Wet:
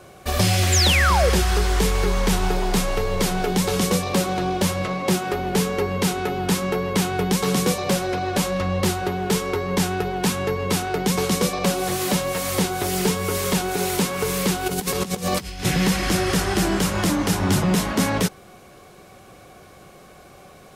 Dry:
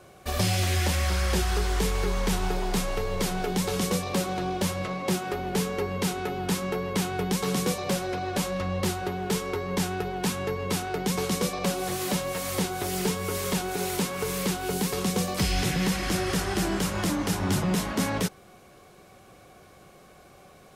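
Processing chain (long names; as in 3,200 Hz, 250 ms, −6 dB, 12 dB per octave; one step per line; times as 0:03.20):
0:00.72–0:01.30: sound drawn into the spectrogram fall 430–7,800 Hz −26 dBFS
0:14.66–0:15.65: compressor whose output falls as the input rises −31 dBFS, ratio −0.5
level +6 dB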